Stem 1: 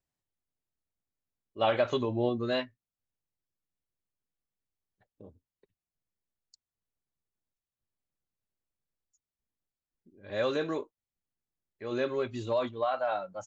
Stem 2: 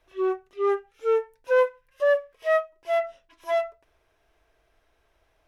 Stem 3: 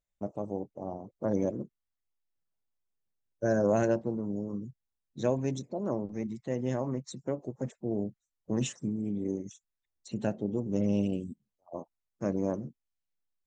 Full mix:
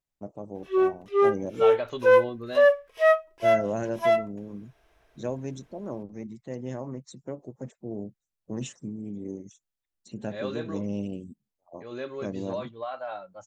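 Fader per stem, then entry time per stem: -5.0 dB, +3.0 dB, -3.5 dB; 0.00 s, 0.55 s, 0.00 s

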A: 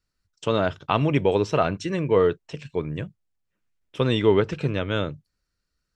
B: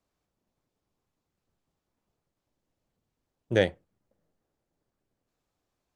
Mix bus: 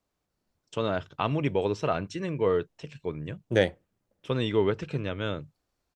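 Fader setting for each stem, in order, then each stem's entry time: -6.0 dB, +0.5 dB; 0.30 s, 0.00 s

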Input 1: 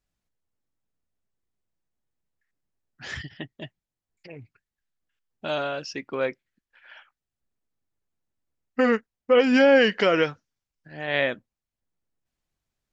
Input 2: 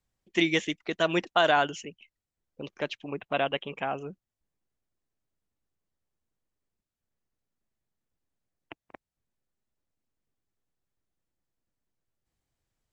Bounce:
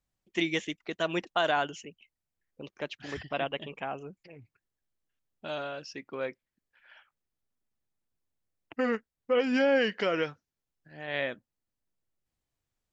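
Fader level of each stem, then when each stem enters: -8.0 dB, -4.5 dB; 0.00 s, 0.00 s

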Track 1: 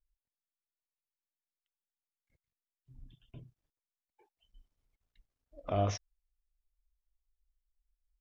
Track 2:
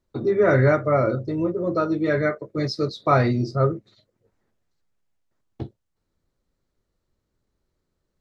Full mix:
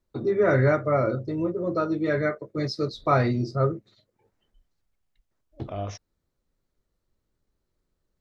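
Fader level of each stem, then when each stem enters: -2.0 dB, -3.0 dB; 0.00 s, 0.00 s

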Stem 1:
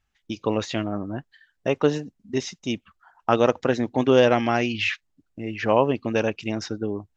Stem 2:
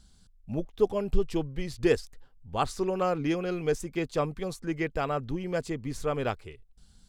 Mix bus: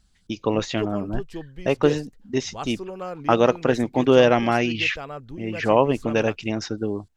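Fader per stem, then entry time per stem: +1.5 dB, -5.5 dB; 0.00 s, 0.00 s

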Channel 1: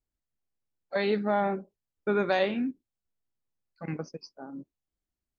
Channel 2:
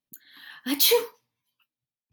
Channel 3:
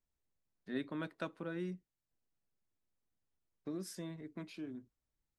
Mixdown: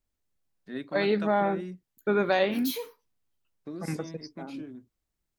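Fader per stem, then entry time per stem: +1.5 dB, -15.5 dB, +2.5 dB; 0.00 s, 1.85 s, 0.00 s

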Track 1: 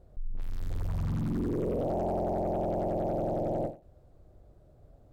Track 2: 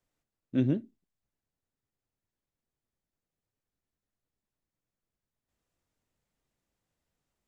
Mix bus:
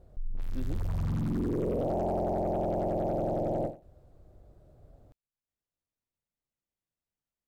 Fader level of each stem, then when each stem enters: +0.5 dB, -13.0 dB; 0.00 s, 0.00 s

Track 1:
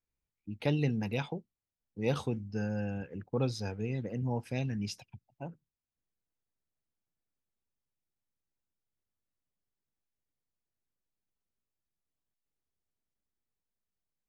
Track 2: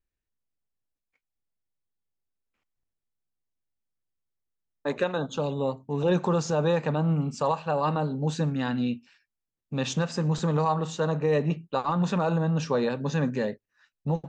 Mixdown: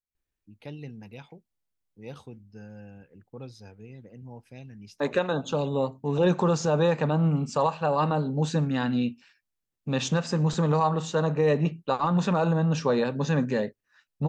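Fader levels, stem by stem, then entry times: -10.5 dB, +1.5 dB; 0.00 s, 0.15 s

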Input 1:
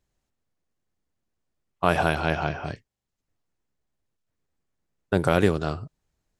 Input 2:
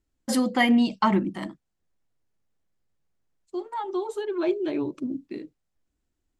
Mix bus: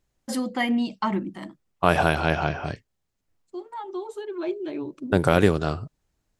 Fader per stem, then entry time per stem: +2.0 dB, -4.0 dB; 0.00 s, 0.00 s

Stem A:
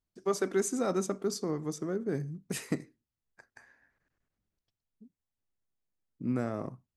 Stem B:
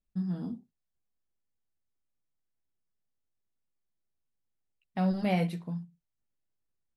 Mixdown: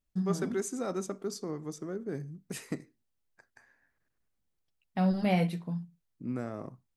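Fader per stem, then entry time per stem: -4.0 dB, +1.0 dB; 0.00 s, 0.00 s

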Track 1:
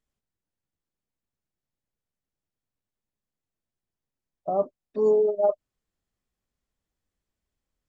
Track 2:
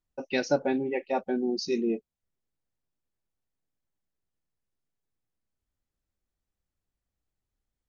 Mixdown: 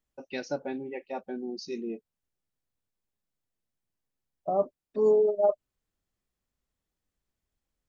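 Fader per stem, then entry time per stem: -1.5 dB, -7.5 dB; 0.00 s, 0.00 s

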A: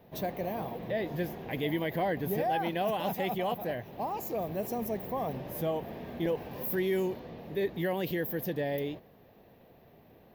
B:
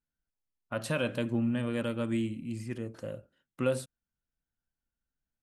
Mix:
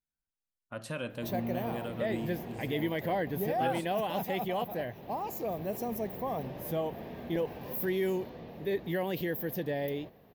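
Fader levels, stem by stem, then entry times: -1.0 dB, -6.5 dB; 1.10 s, 0.00 s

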